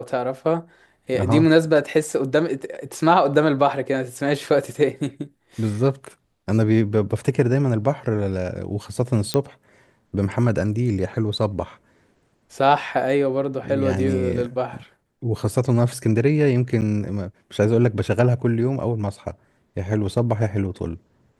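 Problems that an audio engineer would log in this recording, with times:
0:09.34: click −8 dBFS
0:16.81–0:16.82: drop-out 8.9 ms

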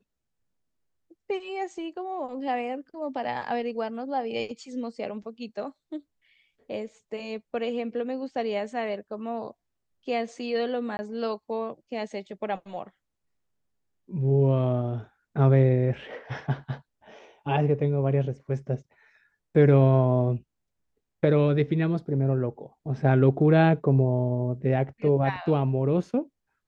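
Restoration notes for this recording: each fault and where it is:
0:10.97–0:10.99: drop-out 20 ms

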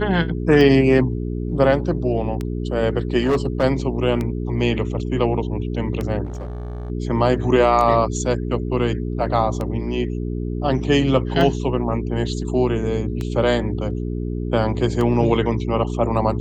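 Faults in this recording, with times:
mains hum 60 Hz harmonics 7 −25 dBFS
scratch tick 33 1/3 rpm −13 dBFS
0:03.22–0:03.64: clipping −14 dBFS
0:06.25–0:06.90: clipping −26 dBFS

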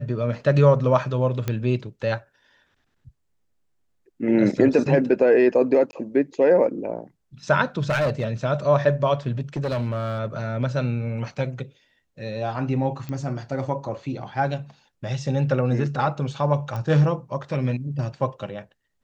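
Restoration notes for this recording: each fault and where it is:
0:01.48: click −12 dBFS
0:05.91–0:05.93: drop-out 20 ms
0:07.89–0:08.27: clipping −18 dBFS
0:09.56–0:10.20: clipping −21 dBFS
0:13.09: click −20 dBFS
0:16.76: click −19 dBFS

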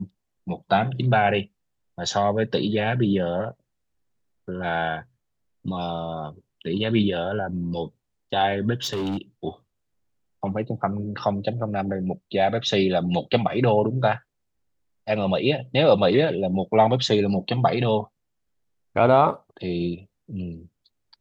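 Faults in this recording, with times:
0:08.76–0:09.18: clipping −23.5 dBFS

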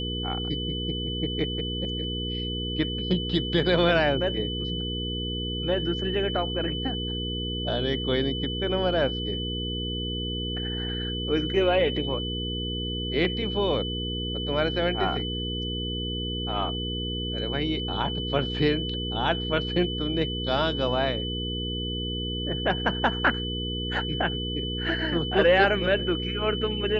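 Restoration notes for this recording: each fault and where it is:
mains hum 60 Hz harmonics 8 −32 dBFS
whistle 3,000 Hz −32 dBFS

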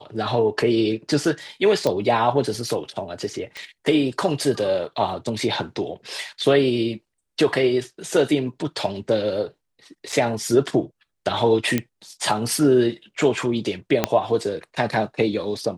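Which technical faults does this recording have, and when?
0:01.87: click −9 dBFS
0:03.57: click −20 dBFS
0:10.12–0:10.13: drop-out 5.3 ms
0:11.78: click −8 dBFS
0:14.04: click −3 dBFS

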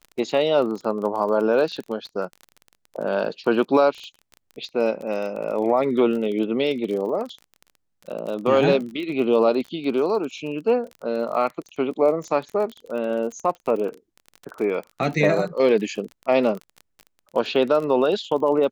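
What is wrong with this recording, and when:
surface crackle 31 per second −30 dBFS

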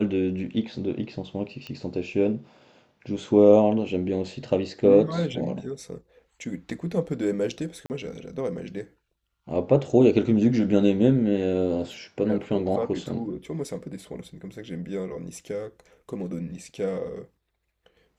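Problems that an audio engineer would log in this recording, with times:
0:01.67: click −24 dBFS
0:07.86–0:07.90: drop-out 39 ms

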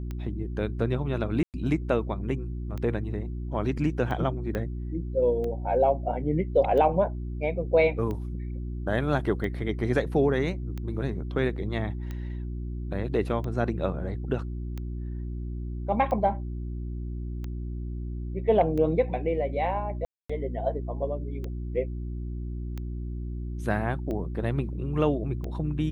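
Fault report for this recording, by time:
mains hum 60 Hz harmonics 6 −33 dBFS
scratch tick 45 rpm −23 dBFS
0:01.43–0:01.54: drop-out 108 ms
0:04.55: click −18 dBFS
0:20.05–0:20.30: drop-out 245 ms

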